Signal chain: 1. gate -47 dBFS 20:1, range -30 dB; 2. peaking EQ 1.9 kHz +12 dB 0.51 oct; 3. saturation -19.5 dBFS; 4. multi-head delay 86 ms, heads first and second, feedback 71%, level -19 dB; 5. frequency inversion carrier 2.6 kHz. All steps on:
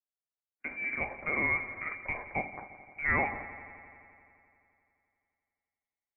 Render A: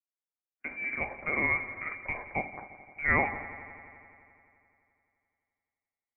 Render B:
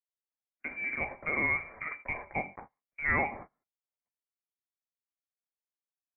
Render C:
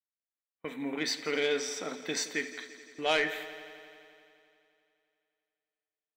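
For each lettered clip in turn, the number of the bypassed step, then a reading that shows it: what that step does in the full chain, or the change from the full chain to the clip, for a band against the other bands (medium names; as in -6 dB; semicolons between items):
3, distortion -15 dB; 4, momentary loudness spread change -4 LU; 5, 500 Hz band +11.5 dB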